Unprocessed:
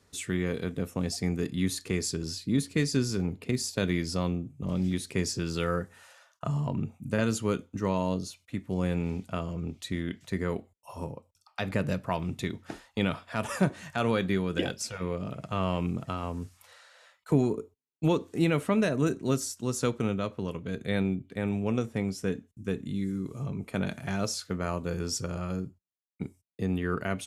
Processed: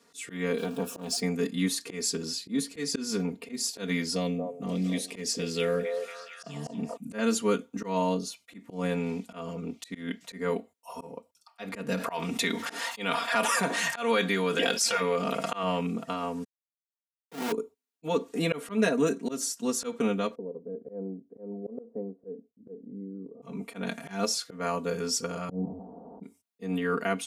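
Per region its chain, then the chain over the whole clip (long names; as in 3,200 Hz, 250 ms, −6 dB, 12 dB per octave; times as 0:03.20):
0:00.58–0:01.20: converter with a step at zero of −42 dBFS + Butterworth band-reject 2,000 Hz, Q 3.9 + saturating transformer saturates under 430 Hz
0:04.15–0:06.97: flat-topped bell 1,100 Hz −9 dB 1.1 octaves + echo through a band-pass that steps 230 ms, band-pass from 640 Hz, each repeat 0.7 octaves, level −2 dB + hard clipping −17 dBFS
0:11.97–0:15.63: low-shelf EQ 430 Hz −10 dB + envelope flattener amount 70%
0:16.44–0:17.52: mains-hum notches 60/120/180/240/300/360 Hz + comparator with hysteresis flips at −34 dBFS + multiband upward and downward compressor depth 40%
0:20.35–0:23.42: transistor ladder low-pass 610 Hz, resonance 45% + low-shelf EQ 170 Hz −5 dB
0:25.49–0:26.23: linear delta modulator 32 kbit/s, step −36 dBFS + elliptic low-pass filter 810 Hz, stop band 60 dB + low-shelf EQ 270 Hz +11.5 dB
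whole clip: high-pass filter 230 Hz 12 dB per octave; comb filter 4.3 ms, depth 93%; volume swells 154 ms; level +1 dB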